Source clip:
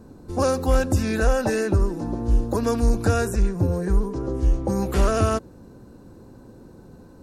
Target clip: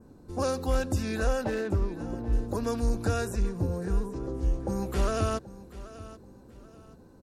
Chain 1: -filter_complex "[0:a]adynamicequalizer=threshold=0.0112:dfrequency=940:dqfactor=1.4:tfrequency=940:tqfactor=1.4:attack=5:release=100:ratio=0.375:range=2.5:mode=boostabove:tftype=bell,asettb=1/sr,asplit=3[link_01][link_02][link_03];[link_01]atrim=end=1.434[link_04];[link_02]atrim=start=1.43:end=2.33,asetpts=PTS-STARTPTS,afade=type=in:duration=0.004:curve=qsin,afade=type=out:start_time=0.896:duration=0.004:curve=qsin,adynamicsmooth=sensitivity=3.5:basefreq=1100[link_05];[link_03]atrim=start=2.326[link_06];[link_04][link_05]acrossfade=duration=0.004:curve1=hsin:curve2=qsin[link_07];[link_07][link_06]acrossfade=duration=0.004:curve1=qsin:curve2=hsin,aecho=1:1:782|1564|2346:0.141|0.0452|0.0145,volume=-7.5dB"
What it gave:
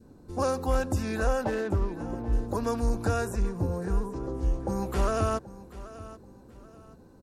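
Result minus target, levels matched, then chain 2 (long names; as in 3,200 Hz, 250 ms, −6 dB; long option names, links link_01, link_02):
4,000 Hz band −3.0 dB
-filter_complex "[0:a]adynamicequalizer=threshold=0.0112:dfrequency=3800:dqfactor=1.4:tfrequency=3800:tqfactor=1.4:attack=5:release=100:ratio=0.375:range=2.5:mode=boostabove:tftype=bell,asettb=1/sr,asplit=3[link_01][link_02][link_03];[link_01]atrim=end=1.434[link_04];[link_02]atrim=start=1.43:end=2.33,asetpts=PTS-STARTPTS,afade=type=in:duration=0.004:curve=qsin,afade=type=out:start_time=0.896:duration=0.004:curve=qsin,adynamicsmooth=sensitivity=3.5:basefreq=1100[link_05];[link_03]atrim=start=2.326[link_06];[link_04][link_05]acrossfade=duration=0.004:curve1=hsin:curve2=qsin[link_07];[link_07][link_06]acrossfade=duration=0.004:curve1=qsin:curve2=hsin,aecho=1:1:782|1564|2346:0.141|0.0452|0.0145,volume=-7.5dB"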